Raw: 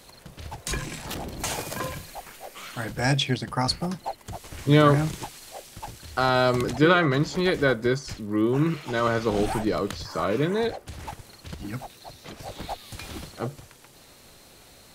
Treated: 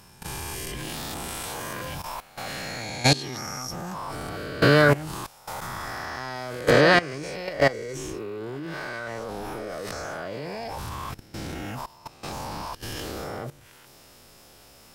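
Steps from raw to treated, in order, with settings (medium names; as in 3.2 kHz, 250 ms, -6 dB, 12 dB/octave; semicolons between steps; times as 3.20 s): reverse spectral sustain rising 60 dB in 1.73 s; formant shift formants +4 st; level held to a coarse grid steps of 18 dB; trim +2 dB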